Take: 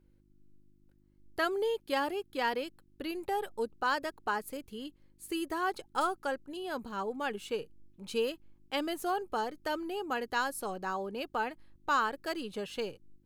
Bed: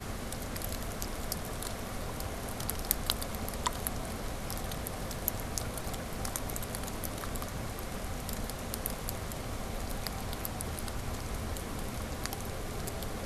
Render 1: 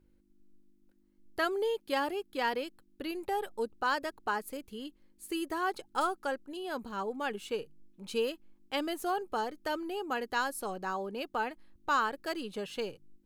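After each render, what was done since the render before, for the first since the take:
hum removal 50 Hz, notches 3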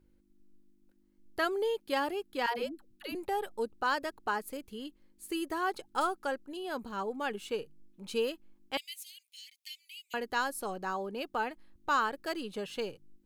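0:02.46–0:03.15: all-pass dispersion lows, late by 131 ms, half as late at 370 Hz
0:08.77–0:10.14: Butterworth high-pass 2,100 Hz 96 dB per octave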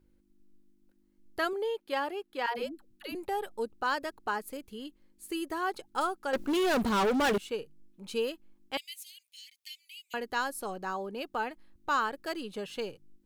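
0:01.53–0:02.55: bass and treble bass −11 dB, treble −6 dB
0:06.33–0:07.38: leveller curve on the samples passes 5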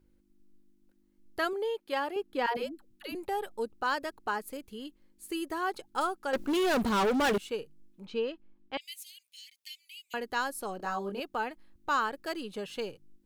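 0:02.16–0:02.57: low-shelf EQ 390 Hz +12 dB
0:08.06–0:08.81: high-frequency loss of the air 210 metres
0:10.77–0:11.20: double-tracking delay 25 ms −2 dB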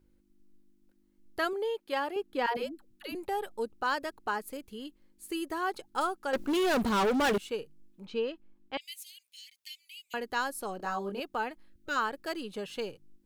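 0:11.69–0:11.96: gain on a spectral selection 610–1,300 Hz −19 dB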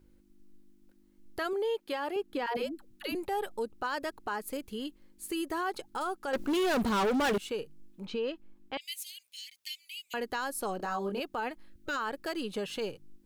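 in parallel at −2 dB: downward compressor, threshold −38 dBFS, peak gain reduction 12.5 dB
on the sum: brickwall limiter −25 dBFS, peak gain reduction 9.5 dB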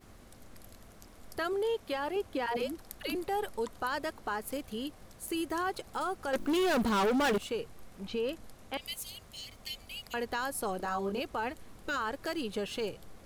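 mix in bed −17 dB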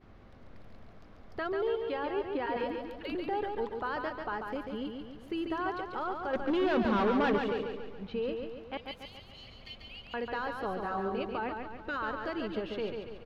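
high-frequency loss of the air 290 metres
repeating echo 141 ms, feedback 51%, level −5 dB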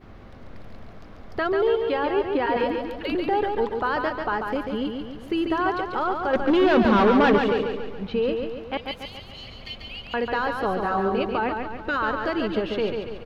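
level +10 dB

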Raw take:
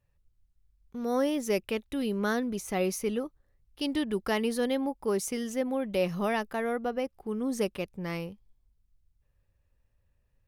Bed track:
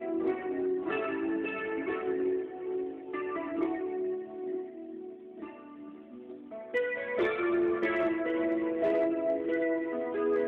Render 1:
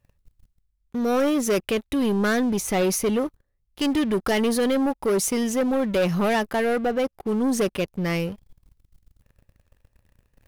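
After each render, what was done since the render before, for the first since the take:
reversed playback
upward compression, threshold −48 dBFS
reversed playback
leveller curve on the samples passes 3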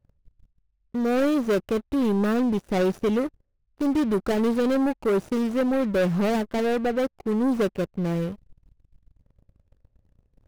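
running median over 41 samples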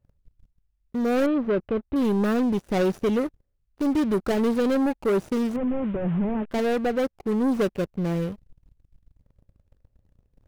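0:01.26–0:01.96: high-frequency loss of the air 420 metres
0:05.56–0:06.51: linear delta modulator 16 kbit/s, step −41.5 dBFS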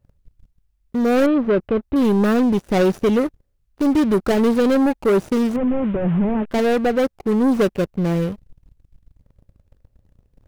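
level +6 dB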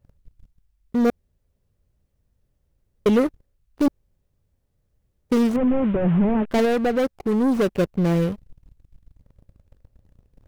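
0:01.10–0:03.06: fill with room tone
0:03.88–0:05.30: fill with room tone
0:06.65–0:07.75: downward compressor 1.5 to 1, threshold −22 dBFS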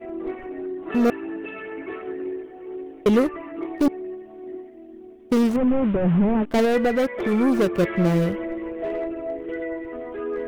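mix in bed track 0 dB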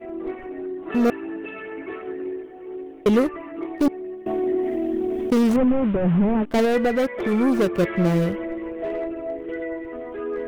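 0:04.26–0:05.72: envelope flattener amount 70%

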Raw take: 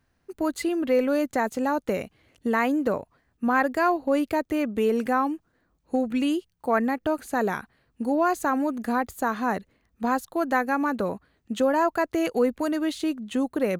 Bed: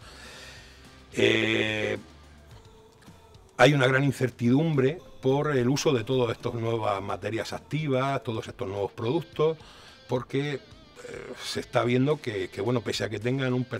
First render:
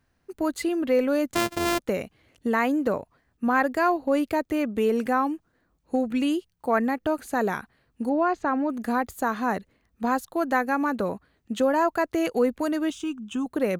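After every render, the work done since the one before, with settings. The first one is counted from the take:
0:01.35–0:01.79: samples sorted by size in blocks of 128 samples
0:08.09–0:08.70: high-frequency loss of the air 200 metres
0:12.90–0:13.46: phaser with its sweep stopped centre 2,900 Hz, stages 8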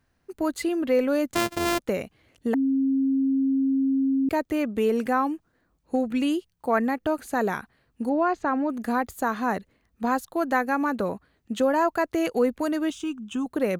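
0:02.54–0:04.29: beep over 269 Hz −19.5 dBFS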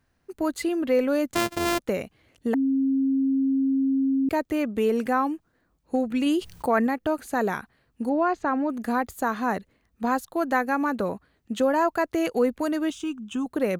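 0:06.26–0:06.87: envelope flattener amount 50%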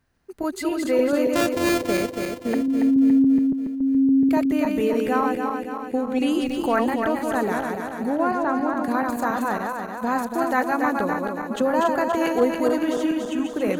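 feedback delay that plays each chunk backwards 141 ms, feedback 74%, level −3.5 dB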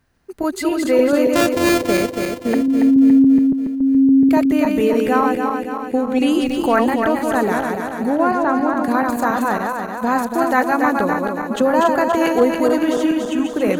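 level +5.5 dB
brickwall limiter −3 dBFS, peak gain reduction 2 dB

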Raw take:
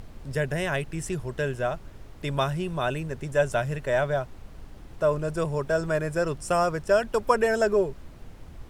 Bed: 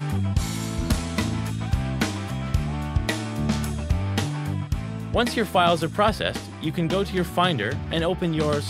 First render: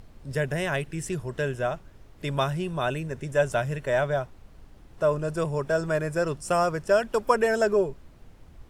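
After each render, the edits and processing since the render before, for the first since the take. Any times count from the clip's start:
noise reduction from a noise print 6 dB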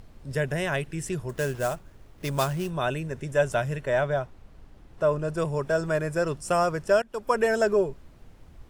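0:01.29–0:02.70: sample-rate reduction 8,500 Hz, jitter 20%
0:03.81–0:05.38: high-shelf EQ 5,100 Hz −5 dB
0:07.02–0:07.44: fade in, from −19.5 dB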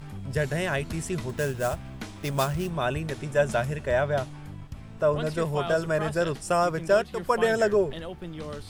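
mix in bed −14 dB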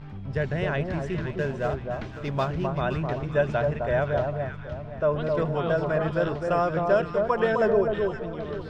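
high-frequency loss of the air 220 metres
delay that swaps between a low-pass and a high-pass 259 ms, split 1,200 Hz, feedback 57%, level −3.5 dB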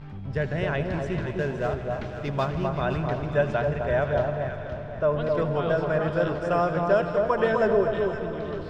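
echo machine with several playback heads 81 ms, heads all three, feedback 70%, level −18 dB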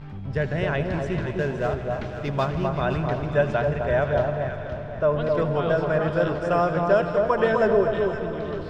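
level +2 dB

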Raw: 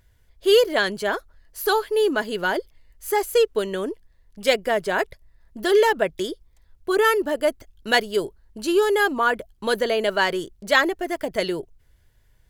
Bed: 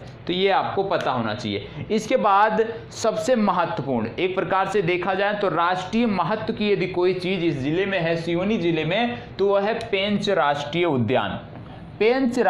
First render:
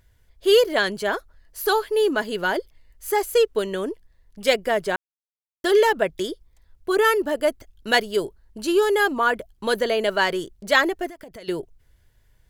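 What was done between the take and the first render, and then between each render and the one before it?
0:04.96–0:05.64: silence
0:11.07–0:11.48: downward compressor, threshold −38 dBFS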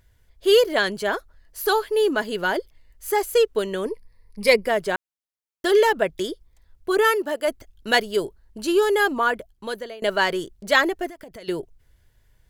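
0:03.85–0:04.66: EQ curve with evenly spaced ripples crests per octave 0.89, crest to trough 13 dB
0:07.06–0:07.47: high-pass filter 230 Hz → 580 Hz 6 dB per octave
0:09.18–0:10.02: fade out, to −22 dB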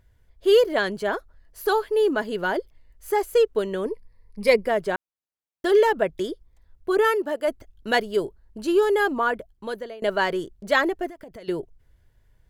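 high-shelf EQ 2,000 Hz −8 dB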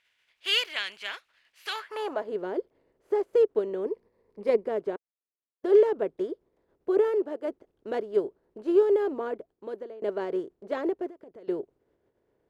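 compressing power law on the bin magnitudes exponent 0.62
band-pass filter sweep 2,600 Hz → 400 Hz, 0:01.71–0:02.32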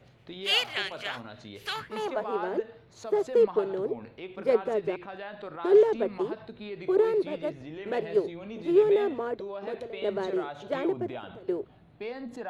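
mix in bed −18.5 dB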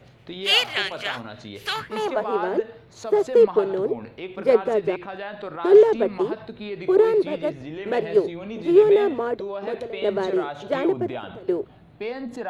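level +6.5 dB

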